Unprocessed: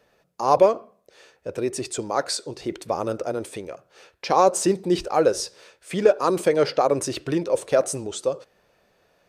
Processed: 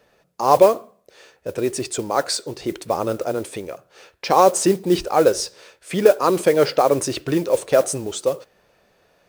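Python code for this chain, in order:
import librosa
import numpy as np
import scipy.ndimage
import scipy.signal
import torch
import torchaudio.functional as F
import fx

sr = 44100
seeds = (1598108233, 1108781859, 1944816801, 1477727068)

y = fx.mod_noise(x, sr, seeds[0], snr_db=23)
y = F.gain(torch.from_numpy(y), 3.5).numpy()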